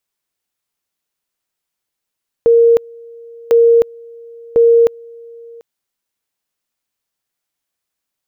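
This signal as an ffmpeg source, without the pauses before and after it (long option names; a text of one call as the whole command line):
ffmpeg -f lavfi -i "aevalsrc='pow(10,(-5.5-27*gte(mod(t,1.05),0.31))/20)*sin(2*PI*465*t)':duration=3.15:sample_rate=44100" out.wav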